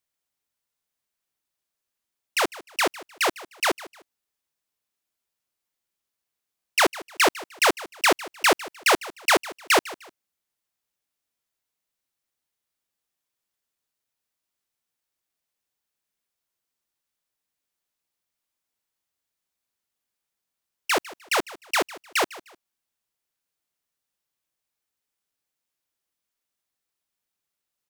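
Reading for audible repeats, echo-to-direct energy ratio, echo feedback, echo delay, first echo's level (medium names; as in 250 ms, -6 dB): 2, -18.0 dB, 29%, 152 ms, -18.5 dB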